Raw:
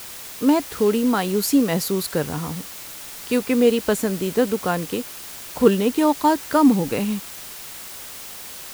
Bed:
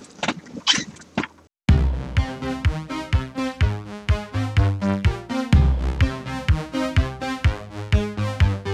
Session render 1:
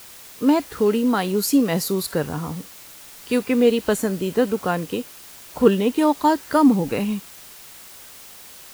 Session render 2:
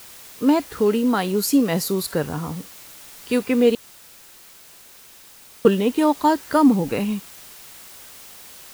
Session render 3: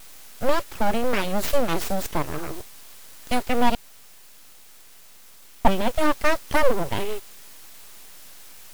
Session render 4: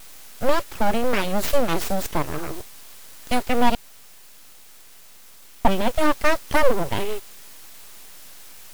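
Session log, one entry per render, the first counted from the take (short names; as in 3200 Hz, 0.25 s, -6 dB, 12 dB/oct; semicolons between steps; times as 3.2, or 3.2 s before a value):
noise print and reduce 6 dB
3.75–5.65 room tone
full-wave rectifier; wow and flutter 28 cents
gain +1.5 dB; limiter -3 dBFS, peak gain reduction 3 dB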